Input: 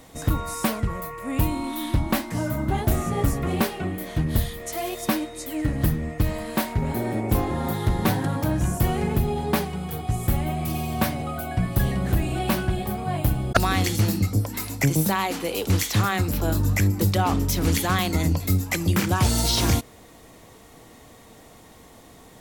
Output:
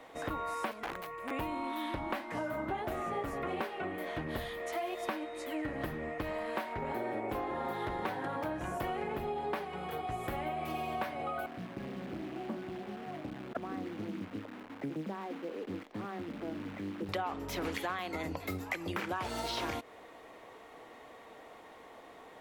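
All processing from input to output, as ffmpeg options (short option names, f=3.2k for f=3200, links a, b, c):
-filter_complex "[0:a]asettb=1/sr,asplit=3[a][b][c];[a]atrim=end=0.714[d];[b]atrim=start=0.71:end=1.31,asetpts=PTS-STARTPTS,afade=t=in:d=0.004:c=qsin,afade=t=out:st=0.596:d=0.004:c=qsin,bandreject=f=2k:w=29,acrossover=split=310|3000[e][f][g];[f]acompressor=threshold=-40dB:ratio=10:attack=3.2:release=140:knee=2.83:detection=peak[h];[e][h][g]amix=inputs=3:normalize=0,aeval=exprs='(mod(21.1*val(0)+1,2)-1)/21.1':c=same[i];[c]atrim=start=1.306[j];[d][i]acrossfade=d=0.004:c1=hsin:c2=qsin[k];[k][j]acrossfade=d=0.004:c1=qsin:c2=hsin,asettb=1/sr,asplit=3[l][m][n];[l]atrim=end=11.464[o];[m]atrim=start=11.46:end=17.09,asetpts=PTS-STARTPTS,afade=t=in:d=0.004:c=qsin,afade=t=out:st=5.626:d=0.004:c=qsin,bandpass=f=230:t=q:w=1.9,acrusher=bits=8:dc=4:mix=0:aa=0.000001[p];[n]atrim=start=17.086[q];[o][p]acrossfade=d=0.004:c1=hsin:c2=qsin[r];[r][q]acrossfade=d=0.004:c1=qsin:c2=hsin,acrossover=split=340 3100:gain=0.112 1 0.126[s][t][u];[s][t][u]amix=inputs=3:normalize=0,acompressor=threshold=-33dB:ratio=6"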